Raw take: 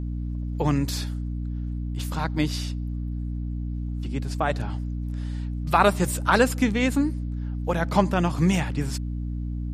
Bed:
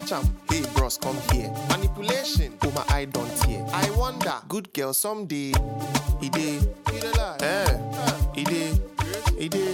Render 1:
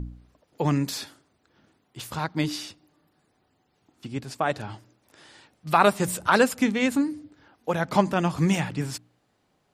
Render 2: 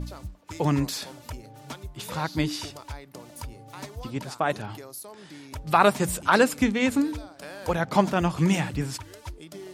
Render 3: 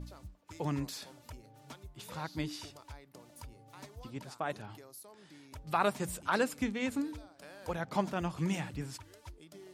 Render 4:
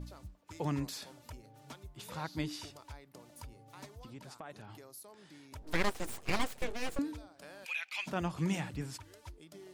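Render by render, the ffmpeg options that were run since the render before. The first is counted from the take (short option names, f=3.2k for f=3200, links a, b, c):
-af "bandreject=f=60:t=h:w=4,bandreject=f=120:t=h:w=4,bandreject=f=180:t=h:w=4,bandreject=f=240:t=h:w=4,bandreject=f=300:t=h:w=4"
-filter_complex "[1:a]volume=-16dB[a];[0:a][a]amix=inputs=2:normalize=0"
-af "volume=-11dB"
-filter_complex "[0:a]asettb=1/sr,asplit=3[a][b][c];[a]atrim=end=3.944[d];[b]atrim=start=3.94:end=4.92,asetpts=PTS-STARTPTS,afade=t=in:d=0.004:c=qsin,afade=t=out:st=0.976:d=0.004:c=qsin,acompressor=threshold=-46dB:ratio=3:attack=3.2:release=140:knee=1:detection=peak[e];[c]atrim=start=4.916[f];[d][e]acrossfade=d=0.004:c1=hsin:c2=qsin[g];[g][f]acrossfade=d=0.004:c1=qsin:c2=hsin,asettb=1/sr,asplit=3[h][i][j];[h]atrim=end=5.624[k];[i]atrim=start=5.62:end=6.99,asetpts=PTS-STARTPTS,afade=t=in:d=0.004:c=qsin,afade=t=out:st=1.366:d=0.004:c=qsin,aeval=exprs='abs(val(0))':c=same[l];[j]atrim=start=6.986[m];[k][l]acrossfade=d=0.004:c1=hsin:c2=qsin[n];[n][m]acrossfade=d=0.004:c1=qsin:c2=hsin,asplit=3[o][p][q];[o]afade=t=out:st=7.64:d=0.02[r];[p]highpass=f=2.5k:t=q:w=12,afade=t=in:st=7.64:d=0.02,afade=t=out:st=8.06:d=0.02[s];[q]afade=t=in:st=8.06:d=0.02[t];[r][s][t]amix=inputs=3:normalize=0"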